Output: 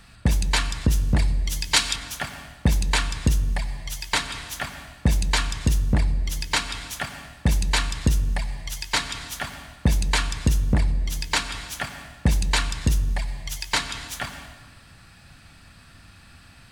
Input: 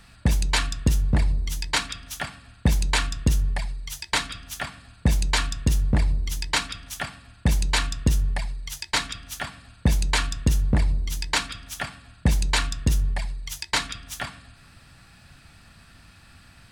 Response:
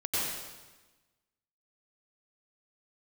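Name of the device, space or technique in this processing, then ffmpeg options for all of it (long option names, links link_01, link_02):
ducked reverb: -filter_complex "[0:a]asplit=3[link_01][link_02][link_03];[1:a]atrim=start_sample=2205[link_04];[link_02][link_04]afir=irnorm=-1:irlink=0[link_05];[link_03]apad=whole_len=737334[link_06];[link_05][link_06]sidechaincompress=threshold=-27dB:ratio=8:attack=16:release=311,volume=-15dB[link_07];[link_01][link_07]amix=inputs=2:normalize=0,asettb=1/sr,asplit=3[link_08][link_09][link_10];[link_08]atrim=end=0.874[link_11];[link_09]atrim=start=0.87:end=1.96,asetpts=PTS-STARTPTS,afade=type=in:duration=0.004:curve=qsin,afade=type=out:start_time=1.086:duration=0.004:curve=qsin,adynamicequalizer=threshold=0.0126:dfrequency=2400:dqfactor=0.7:tfrequency=2400:tqfactor=0.7:attack=5:release=100:ratio=0.375:range=4:mode=boostabove:tftype=highshelf[link_12];[link_10]atrim=start=1.956[link_13];[link_11][link_12]acrossfade=duration=0.004:curve1=hsin:curve2=qsin[link_14];[link_14][link_13]acrossfade=duration=0.004:curve1=qsin:curve2=hsin"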